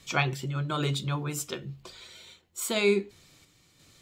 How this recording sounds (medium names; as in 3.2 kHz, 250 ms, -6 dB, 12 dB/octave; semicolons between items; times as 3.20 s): random-step tremolo 2.9 Hz